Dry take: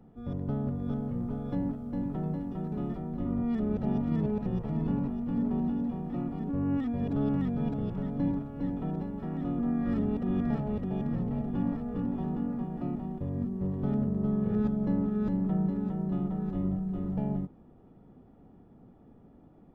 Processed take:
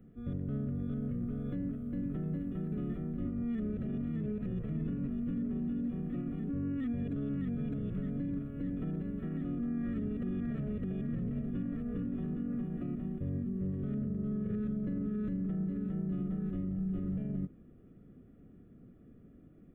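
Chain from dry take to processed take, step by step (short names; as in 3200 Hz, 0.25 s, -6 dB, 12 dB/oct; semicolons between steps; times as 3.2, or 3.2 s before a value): limiter -27.5 dBFS, peak gain reduction 10 dB; fixed phaser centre 2100 Hz, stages 4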